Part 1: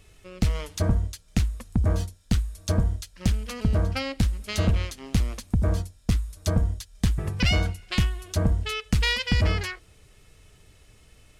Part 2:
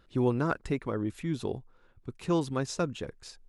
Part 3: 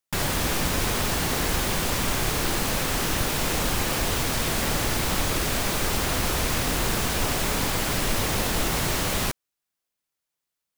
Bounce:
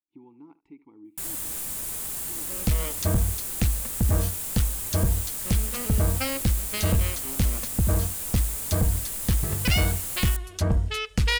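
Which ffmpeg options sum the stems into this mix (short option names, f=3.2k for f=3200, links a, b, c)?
-filter_complex "[0:a]adelay=2250,volume=0.5dB[a];[1:a]agate=range=-33dB:threshold=-50dB:ratio=3:detection=peak,acompressor=threshold=-34dB:ratio=3,asplit=3[b][c][d];[b]bandpass=f=300:t=q:w=8,volume=0dB[e];[c]bandpass=f=870:t=q:w=8,volume=-6dB[f];[d]bandpass=f=2.24k:t=q:w=8,volume=-9dB[g];[e][f][g]amix=inputs=3:normalize=0,volume=-4dB,asplit=2[h][i];[i]volume=-17.5dB[j];[2:a]equalizer=f=7.2k:t=o:w=1.8:g=7,aexciter=amount=5:drive=6:freq=7.6k,adelay=1050,volume=-18.5dB[k];[j]aecho=0:1:74:1[l];[a][h][k][l]amix=inputs=4:normalize=0,volume=16dB,asoftclip=hard,volume=-16dB"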